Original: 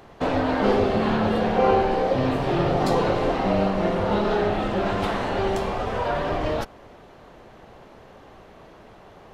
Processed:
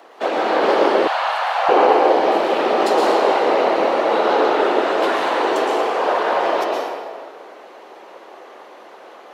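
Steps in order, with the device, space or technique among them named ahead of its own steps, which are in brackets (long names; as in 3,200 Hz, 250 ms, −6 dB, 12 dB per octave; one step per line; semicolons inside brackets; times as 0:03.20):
whispering ghost (random phases in short frames; high-pass filter 360 Hz 24 dB per octave; convolution reverb RT60 1.8 s, pre-delay 110 ms, DRR −2 dB)
0:01.07–0:01.69: Butterworth high-pass 650 Hz 48 dB per octave
level +4 dB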